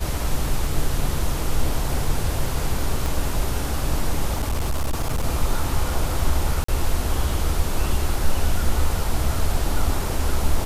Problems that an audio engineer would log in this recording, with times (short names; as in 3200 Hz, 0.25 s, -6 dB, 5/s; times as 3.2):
3.06 pop
4.33–5.24 clipped -18 dBFS
6.64–6.68 gap 44 ms